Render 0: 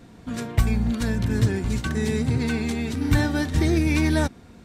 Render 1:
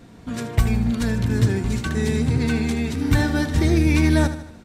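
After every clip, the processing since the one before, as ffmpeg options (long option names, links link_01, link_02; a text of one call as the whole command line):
ffmpeg -i in.wav -af "aecho=1:1:77|154|231|308|385:0.237|0.119|0.0593|0.0296|0.0148,volume=1.5dB" out.wav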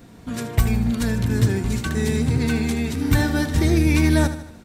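ffmpeg -i in.wav -af "highshelf=frequency=12000:gain=12" out.wav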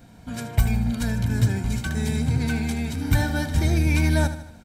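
ffmpeg -i in.wav -af "aecho=1:1:1.3:0.48,volume=-4dB" out.wav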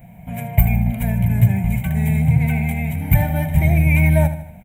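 ffmpeg -i in.wav -af "firequalizer=gain_entry='entry(100,0);entry(170,9);entry(250,-10);entry(410,-10);entry(660,5);entry(1400,-16);entry(2100,6);entry(4600,-29);entry(7200,-12);entry(14000,10)':delay=0.05:min_phase=1,volume=4.5dB" out.wav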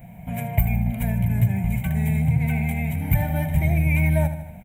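ffmpeg -i in.wav -af "acompressor=threshold=-25dB:ratio=1.5" out.wav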